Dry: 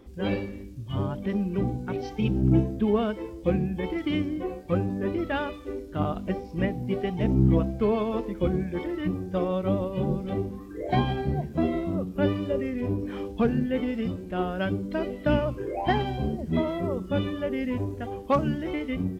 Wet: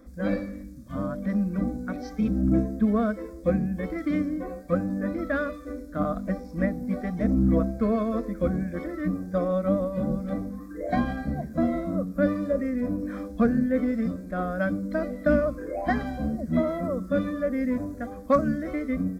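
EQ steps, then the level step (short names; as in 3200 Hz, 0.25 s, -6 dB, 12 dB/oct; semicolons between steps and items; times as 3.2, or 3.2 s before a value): fixed phaser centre 580 Hz, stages 8; +3.5 dB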